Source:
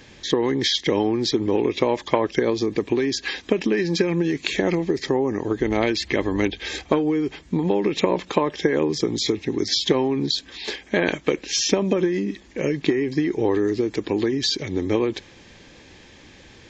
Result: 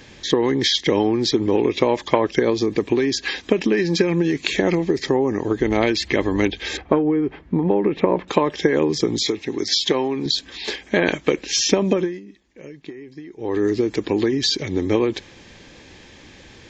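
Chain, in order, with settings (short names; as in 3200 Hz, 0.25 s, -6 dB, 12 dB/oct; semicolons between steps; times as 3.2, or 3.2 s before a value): 6.77–8.28 LPF 1700 Hz 12 dB/oct; 9.23–10.26 low shelf 240 Hz -10 dB; 11.93–13.65 dip -18 dB, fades 0.27 s; gain +2.5 dB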